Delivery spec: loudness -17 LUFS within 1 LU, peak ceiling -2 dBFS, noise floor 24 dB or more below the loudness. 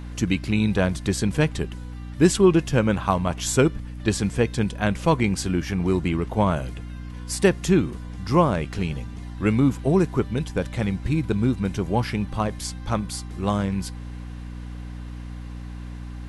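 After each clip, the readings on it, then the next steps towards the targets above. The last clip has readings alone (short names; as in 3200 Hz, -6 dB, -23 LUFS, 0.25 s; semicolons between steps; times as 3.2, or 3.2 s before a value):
hum 60 Hz; harmonics up to 300 Hz; hum level -33 dBFS; loudness -23.5 LUFS; peak -4.0 dBFS; loudness target -17.0 LUFS
-> notches 60/120/180/240/300 Hz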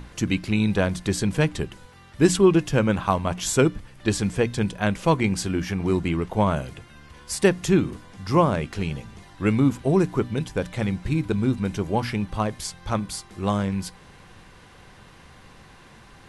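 hum none; loudness -24.0 LUFS; peak -5.0 dBFS; loudness target -17.0 LUFS
-> gain +7 dB; limiter -2 dBFS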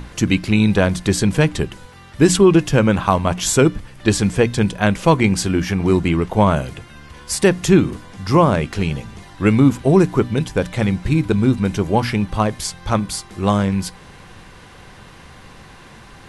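loudness -17.5 LUFS; peak -2.0 dBFS; noise floor -42 dBFS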